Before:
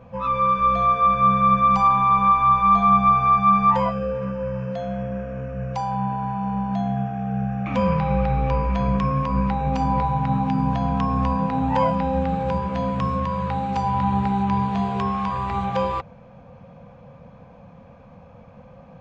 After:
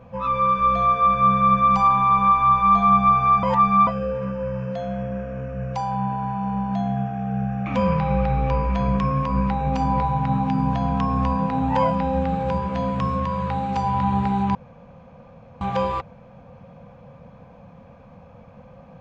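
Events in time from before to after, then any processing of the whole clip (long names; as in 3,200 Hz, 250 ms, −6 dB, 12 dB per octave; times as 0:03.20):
0:03.43–0:03.87: reverse
0:14.55–0:15.61: fill with room tone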